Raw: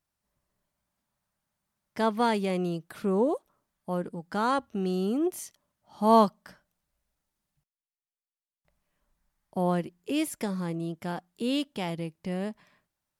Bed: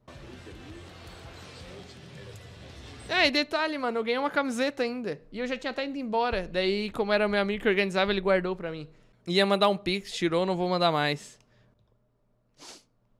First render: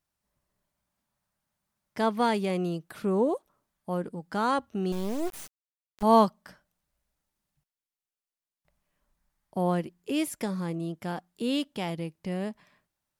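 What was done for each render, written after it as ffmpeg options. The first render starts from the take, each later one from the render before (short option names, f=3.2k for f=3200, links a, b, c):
-filter_complex "[0:a]asettb=1/sr,asplit=3[a][b][c];[a]atrim=end=4.924[d];[b]atrim=start=4.92:end=6.03,asetpts=PTS-STARTPTS,afade=t=in:d=0.004:c=qsin,afade=t=out:st=1.106:d=0.004:c=qsin,acrusher=bits=4:dc=4:mix=0:aa=0.000001[e];[c]atrim=start=6.026[f];[d][e]acrossfade=d=0.004:c1=hsin:c2=qsin[g];[g][f]acrossfade=d=0.004:c1=qsin:c2=hsin"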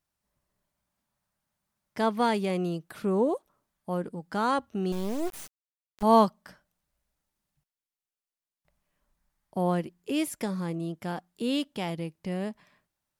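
-af anull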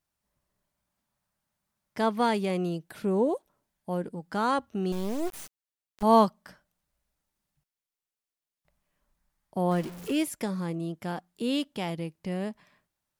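-filter_complex "[0:a]asettb=1/sr,asplit=3[a][b][c];[a]atrim=end=2.694[d];[b]atrim=start=2.69:end=4.13,asetpts=PTS-STARTPTS,afade=t=in:d=0.004:c=qsin,afade=t=out:st=1.436:d=0.004:c=qsin,equalizer=f=1.2k:t=o:w=0.23:g=-9[e];[c]atrim=start=4.126[f];[d][e]acrossfade=d=0.004:c1=hsin:c2=qsin[g];[g][f]acrossfade=d=0.004:c1=qsin:c2=hsin,asettb=1/sr,asplit=3[h][i][j];[h]atrim=end=9.714[k];[i]atrim=start=9.71:end=10.23,asetpts=PTS-STARTPTS,afade=t=in:d=0.004:c=qsin,afade=t=out:st=0.516:d=0.004:c=qsin,aeval=exprs='val(0)+0.5*0.0141*sgn(val(0))':c=same[l];[j]atrim=start=10.226[m];[k][l]acrossfade=d=0.004:c1=hsin:c2=qsin[n];[n][m]acrossfade=d=0.004:c1=qsin:c2=hsin"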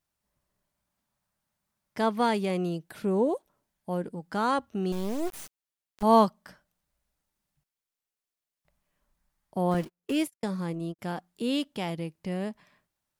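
-filter_complex "[0:a]asettb=1/sr,asplit=3[a][b][c];[a]atrim=end=9.744[d];[b]atrim=start=9.74:end=10.99,asetpts=PTS-STARTPTS,afade=t=in:d=0.004:c=qsin,afade=t=out:st=1.246:d=0.004:c=qsin,agate=range=-47dB:threshold=-34dB:ratio=16:release=100:detection=peak[e];[c]atrim=start=10.986[f];[d][e]acrossfade=d=0.004:c1=hsin:c2=qsin[g];[g][f]acrossfade=d=0.004:c1=qsin:c2=hsin"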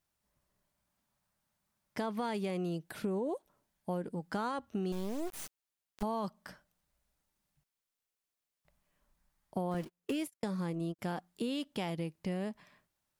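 -af "alimiter=limit=-20dB:level=0:latency=1:release=19,acompressor=threshold=-32dB:ratio=6"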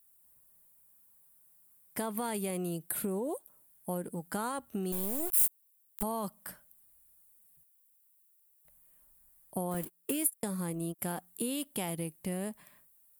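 -af "aexciter=amount=14.6:drive=2.6:freq=8.2k"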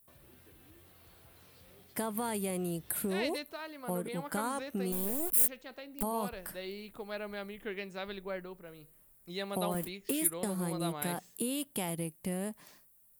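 -filter_complex "[1:a]volume=-15.5dB[a];[0:a][a]amix=inputs=2:normalize=0"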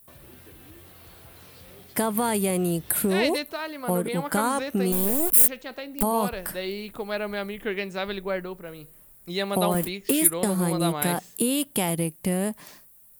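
-af "volume=10.5dB,alimiter=limit=-3dB:level=0:latency=1"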